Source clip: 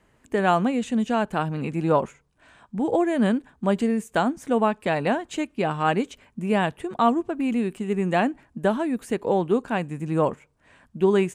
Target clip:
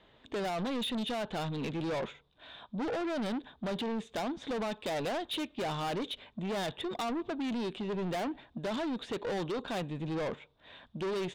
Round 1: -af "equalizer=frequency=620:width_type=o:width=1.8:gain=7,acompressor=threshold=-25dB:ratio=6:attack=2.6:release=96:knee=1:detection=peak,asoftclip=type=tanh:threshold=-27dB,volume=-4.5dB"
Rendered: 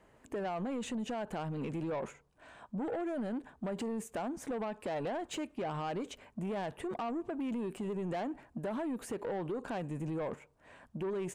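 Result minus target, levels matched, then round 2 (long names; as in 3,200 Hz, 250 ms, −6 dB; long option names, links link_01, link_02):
4,000 Hz band −9.0 dB; downward compressor: peak gain reduction +7.5 dB
-af "lowpass=frequency=3600:width_type=q:width=13,equalizer=frequency=620:width_type=o:width=1.8:gain=7,acompressor=threshold=-15dB:ratio=6:attack=2.6:release=96:knee=1:detection=peak,asoftclip=type=tanh:threshold=-27dB,volume=-4.5dB"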